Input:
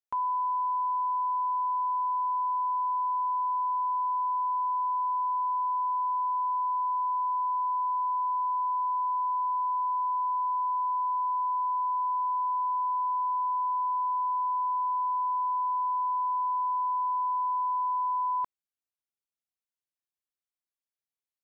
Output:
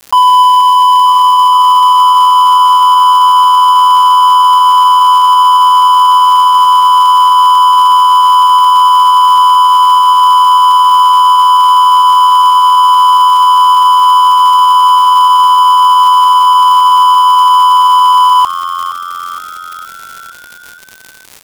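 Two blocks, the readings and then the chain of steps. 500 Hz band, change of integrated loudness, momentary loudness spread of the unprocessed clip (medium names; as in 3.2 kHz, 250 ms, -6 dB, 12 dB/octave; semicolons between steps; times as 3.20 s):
no reading, +23.0 dB, 0 LU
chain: median filter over 41 samples; peaking EQ 1 kHz +9.5 dB 1.2 oct; static phaser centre 970 Hz, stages 4; comb 2.8 ms, depth 98%; saturation -35.5 dBFS, distortion -14 dB; crackle 230 per s -50 dBFS; crossover distortion -58.5 dBFS; frequency-shifting echo 467 ms, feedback 59%, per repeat +87 Hz, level -15 dB; loudness maximiser +36 dB; trim -1 dB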